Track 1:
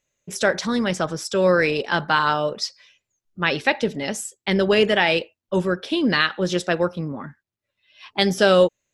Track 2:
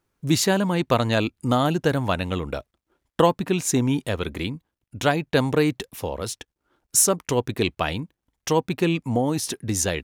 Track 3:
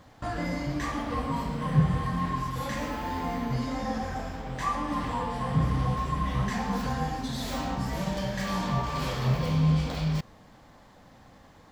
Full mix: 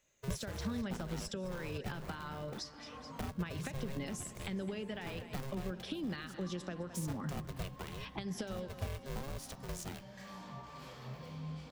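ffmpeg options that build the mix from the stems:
-filter_complex "[0:a]acompressor=threshold=-28dB:ratio=4,volume=1dB,asplit=2[a][b];[b]volume=-19.5dB[c];[1:a]bandreject=f=280.6:t=h:w=4,bandreject=f=561.2:t=h:w=4,bandreject=f=841.8:t=h:w=4,bandreject=f=1.1224k:t=h:w=4,bandreject=f=1.403k:t=h:w=4,bandreject=f=1.6836k:t=h:w=4,bandreject=f=1.9642k:t=h:w=4,bandreject=f=2.2448k:t=h:w=4,bandreject=f=2.5254k:t=h:w=4,bandreject=f=2.806k:t=h:w=4,bandreject=f=3.0866k:t=h:w=4,bandreject=f=3.3672k:t=h:w=4,bandreject=f=3.6478k:t=h:w=4,bandreject=f=3.9284k:t=h:w=4,bandreject=f=4.209k:t=h:w=4,bandreject=f=4.4896k:t=h:w=4,bandreject=f=4.7702k:t=h:w=4,bandreject=f=5.0508k:t=h:w=4,bandreject=f=5.3314k:t=h:w=4,bandreject=f=5.612k:t=h:w=4,bandreject=f=5.8926k:t=h:w=4,acrusher=bits=2:mode=log:mix=0:aa=0.000001,aeval=exprs='val(0)*sgn(sin(2*PI*270*n/s))':c=same,volume=-14dB[d];[2:a]highpass=f=160:p=1,adelay=1800,volume=-17.5dB[e];[a][d]amix=inputs=2:normalize=0,acompressor=threshold=-29dB:ratio=6,volume=0dB[f];[c]aecho=0:1:211|422|633|844|1055|1266|1477|1688|1899:1|0.58|0.336|0.195|0.113|0.0656|0.0381|0.0221|0.0128[g];[e][f][g]amix=inputs=3:normalize=0,acrossover=split=220[h][i];[i]acompressor=threshold=-46dB:ratio=3[j];[h][j]amix=inputs=2:normalize=0"

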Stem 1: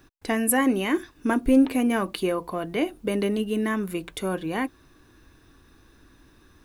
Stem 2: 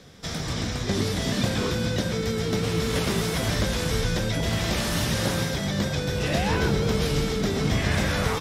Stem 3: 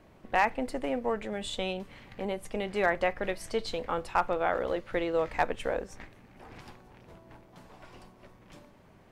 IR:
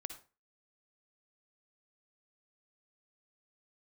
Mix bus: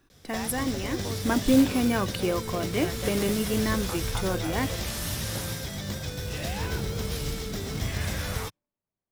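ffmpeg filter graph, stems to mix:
-filter_complex "[0:a]volume=-2dB,afade=t=in:st=1.09:d=0.23:silence=0.473151,asplit=2[a][b];[1:a]firequalizer=gain_entry='entry(100,0);entry(150,-6);entry(13000,7)':delay=0.05:min_phase=1,adelay=100,volume=-4dB[c];[2:a]acompressor=threshold=-32dB:ratio=6,volume=-3dB[d];[b]apad=whole_len=401860[e];[d][e]sidechaingate=range=-33dB:threshold=-52dB:ratio=16:detection=peak[f];[a][c][f]amix=inputs=3:normalize=0,acrusher=bits=4:mode=log:mix=0:aa=0.000001"

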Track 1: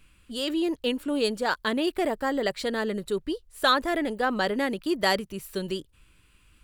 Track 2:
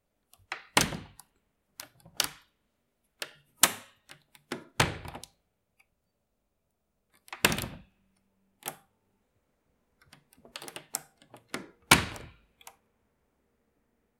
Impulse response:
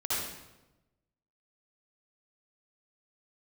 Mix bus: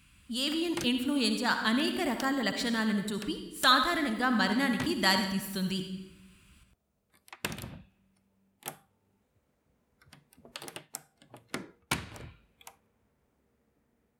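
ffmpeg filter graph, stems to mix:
-filter_complex "[0:a]firequalizer=gain_entry='entry(230,0);entry(400,-15);entry(1000,-4);entry(4800,-1)':delay=0.05:min_phase=1,volume=1dB,asplit=3[a][b][c];[b]volume=-11.5dB[d];[1:a]lowshelf=f=200:g=6,dynaudnorm=f=110:g=3:m=13dB,volume=-13.5dB[e];[c]apad=whole_len=626006[f];[e][f]sidechaincompress=threshold=-43dB:ratio=8:attack=16:release=130[g];[2:a]atrim=start_sample=2205[h];[d][h]afir=irnorm=-1:irlink=0[i];[a][g][i]amix=inputs=3:normalize=0,highpass=64"

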